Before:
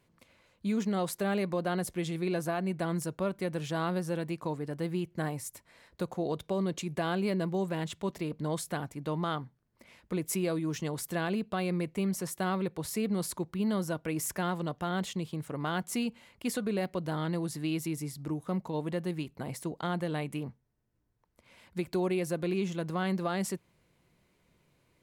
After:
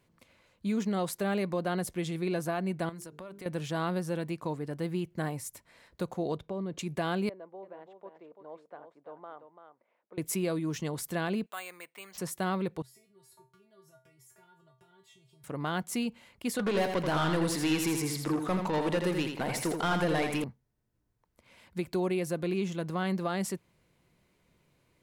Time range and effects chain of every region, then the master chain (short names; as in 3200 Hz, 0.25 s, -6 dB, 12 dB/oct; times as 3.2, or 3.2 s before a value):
2.89–3.46 low shelf 220 Hz -7.5 dB + notches 50/100/150/200/250/300/350/400/450 Hz + compressor, threshold -41 dBFS
6.37–6.79 LPF 1600 Hz 6 dB/oct + compressor 1.5:1, threshold -39 dBFS
7.29–10.18 ladder band-pass 720 Hz, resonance 25% + echo 0.338 s -8.5 dB
11.46–12.18 HPF 1100 Hz + air absorption 110 m + careless resampling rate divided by 4×, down none, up hold
12.82–15.44 HPF 50 Hz + compressor 12:1, threshold -41 dBFS + resonator 130 Hz, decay 0.29 s, harmonics odd, mix 100%
16.59–20.44 overdrive pedal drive 21 dB, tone 4900 Hz, clips at -21 dBFS + feedback echo 83 ms, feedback 29%, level -6 dB
whole clip: dry